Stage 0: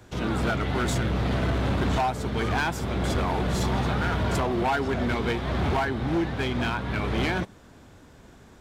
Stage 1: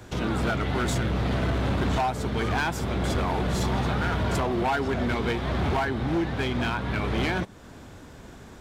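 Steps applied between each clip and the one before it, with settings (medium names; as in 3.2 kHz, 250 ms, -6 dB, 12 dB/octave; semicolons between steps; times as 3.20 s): compression 1.5:1, threshold -39 dBFS, peak gain reduction 6 dB; trim +5.5 dB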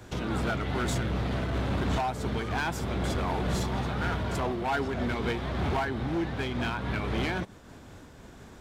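random flutter of the level, depth 50%; trim -1.5 dB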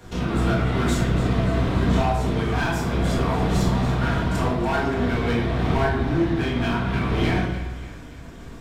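on a send: two-band feedback delay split 1.2 kHz, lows 96 ms, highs 287 ms, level -13.5 dB; on the sum: simulated room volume 220 m³, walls mixed, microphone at 1.7 m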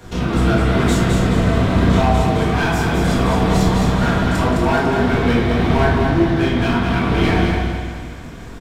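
feedback delay 211 ms, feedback 41%, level -4.5 dB; trim +5 dB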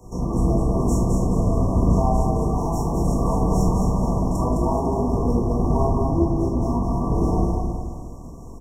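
octave divider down 2 oct, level -2 dB; brick-wall FIR band-stop 1.2–5.3 kHz; trim -5.5 dB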